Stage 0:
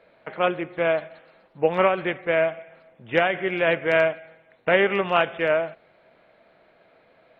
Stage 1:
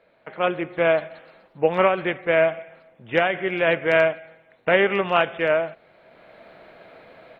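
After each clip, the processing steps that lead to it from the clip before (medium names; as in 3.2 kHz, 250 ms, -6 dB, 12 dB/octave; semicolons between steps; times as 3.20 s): level rider gain up to 14 dB; trim -3.5 dB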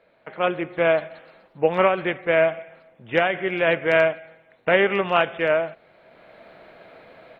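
no audible change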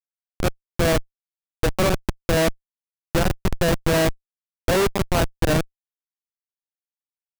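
one-bit delta coder 32 kbps, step -22.5 dBFS; Schmitt trigger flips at -17 dBFS; trim +5 dB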